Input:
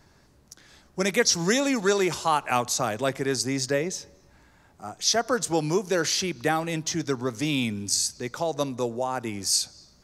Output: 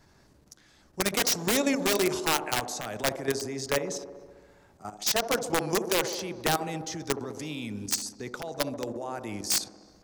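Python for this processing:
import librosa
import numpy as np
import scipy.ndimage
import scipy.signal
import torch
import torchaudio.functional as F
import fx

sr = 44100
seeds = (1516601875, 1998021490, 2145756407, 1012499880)

y = (np.mod(10.0 ** (15.0 / 20.0) * x + 1.0, 2.0) - 1.0) / 10.0 ** (15.0 / 20.0)
y = fx.level_steps(y, sr, step_db=12)
y = fx.echo_wet_bandpass(y, sr, ms=68, feedback_pct=74, hz=420.0, wet_db=-8.0)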